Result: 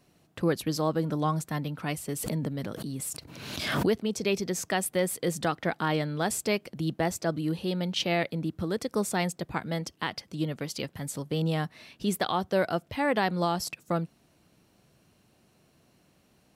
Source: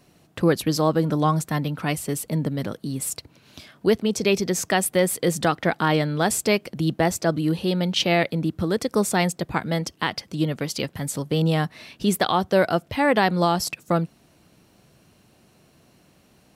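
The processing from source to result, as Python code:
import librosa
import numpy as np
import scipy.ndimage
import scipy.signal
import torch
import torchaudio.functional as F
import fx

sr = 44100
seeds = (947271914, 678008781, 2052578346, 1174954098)

y = fx.pre_swell(x, sr, db_per_s=43.0, at=(2.08, 4.01))
y = y * 10.0 ** (-7.0 / 20.0)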